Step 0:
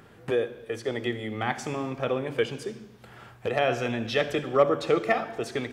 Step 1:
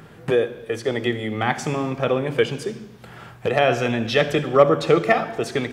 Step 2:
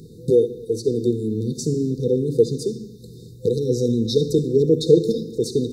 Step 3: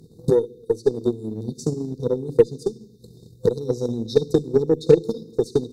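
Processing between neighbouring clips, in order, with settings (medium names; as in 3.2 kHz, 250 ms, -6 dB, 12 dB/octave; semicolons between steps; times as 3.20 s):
peaking EQ 160 Hz +8.5 dB 0.23 oct; trim +6.5 dB
FFT band-reject 510–3600 Hz; trim +3.5 dB
transient shaper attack +10 dB, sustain -4 dB; Chebyshev shaper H 8 -33 dB, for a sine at 6 dBFS; trim -7 dB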